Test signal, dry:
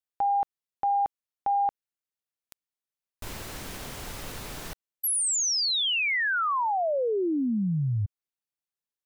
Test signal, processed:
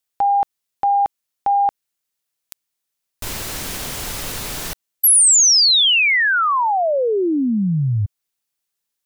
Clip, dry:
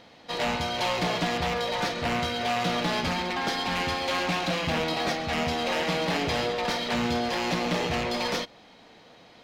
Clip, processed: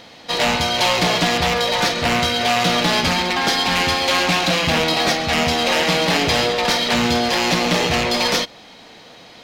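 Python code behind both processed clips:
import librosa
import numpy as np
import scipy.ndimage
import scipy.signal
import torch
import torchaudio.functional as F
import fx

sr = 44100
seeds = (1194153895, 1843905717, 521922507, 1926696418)

y = fx.high_shelf(x, sr, hz=2800.0, db=7.0)
y = F.gain(torch.from_numpy(y), 8.0).numpy()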